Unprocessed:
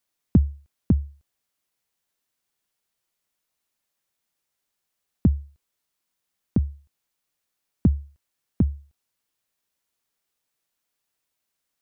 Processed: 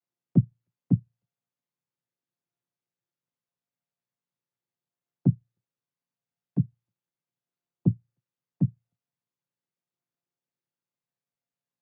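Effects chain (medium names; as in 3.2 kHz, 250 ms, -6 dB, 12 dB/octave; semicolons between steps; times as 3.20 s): vocoder on a held chord minor triad, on A#2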